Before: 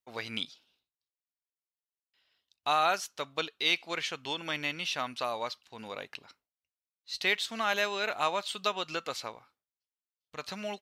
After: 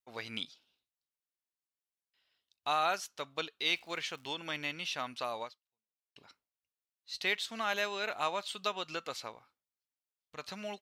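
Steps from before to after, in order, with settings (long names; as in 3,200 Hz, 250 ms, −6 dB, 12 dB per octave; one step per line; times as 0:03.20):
0:03.72–0:04.31: surface crackle 190 per second −44 dBFS
0:05.42–0:06.16: fade out exponential
level −4 dB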